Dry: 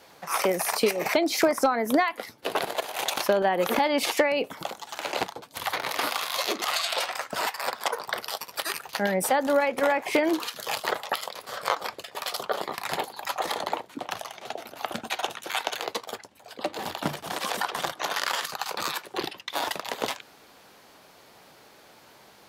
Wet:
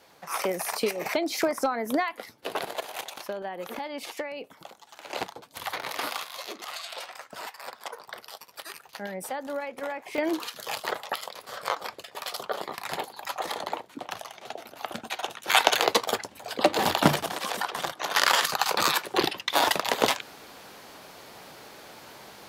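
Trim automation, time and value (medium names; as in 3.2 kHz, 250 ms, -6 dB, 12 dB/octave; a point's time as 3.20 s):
-4 dB
from 3.01 s -12 dB
from 5.10 s -4 dB
from 6.23 s -10.5 dB
from 10.18 s -3 dB
from 15.48 s +9 dB
from 17.26 s -1.5 dB
from 18.15 s +6.5 dB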